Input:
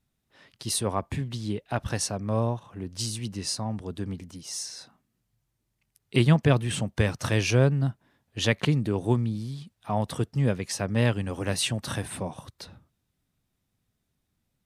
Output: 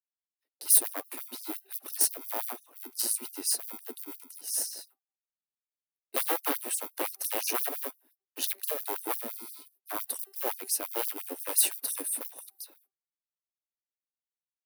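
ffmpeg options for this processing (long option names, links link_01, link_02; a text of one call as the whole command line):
ffmpeg -i in.wav -filter_complex "[0:a]equalizer=frequency=1400:width=0.6:gain=-10,agate=range=-51dB:threshold=-56dB:ratio=16:detection=peak,bandreject=frequency=3300:width=6.9,bandreject=frequency=390.6:width_type=h:width=4,bandreject=frequency=781.2:width_type=h:width=4,bandreject=frequency=1171.8:width_type=h:width=4,asplit=2[link_01][link_02];[link_02]acrusher=samples=38:mix=1:aa=0.000001,volume=-8dB[link_03];[link_01][link_03]amix=inputs=2:normalize=0,aeval=exprs='0.0891*(abs(mod(val(0)/0.0891+3,4)-2)-1)':channel_layout=same,acrossover=split=370[link_04][link_05];[link_05]aexciter=amount=7.5:drive=7.7:freq=10000[link_06];[link_04][link_06]amix=inputs=2:normalize=0,afftfilt=real='re*gte(b*sr/1024,230*pow(4900/230,0.5+0.5*sin(2*PI*5.8*pts/sr)))':imag='im*gte(b*sr/1024,230*pow(4900/230,0.5+0.5*sin(2*PI*5.8*pts/sr)))':win_size=1024:overlap=0.75,volume=-1dB" out.wav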